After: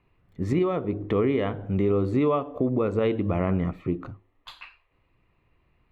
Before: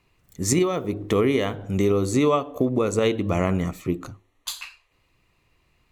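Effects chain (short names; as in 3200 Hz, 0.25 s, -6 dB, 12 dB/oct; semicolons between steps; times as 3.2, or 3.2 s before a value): air absorption 460 m; in parallel at -0.5 dB: limiter -18 dBFS, peak gain reduction 8.5 dB; on the sum: gain -5.5 dB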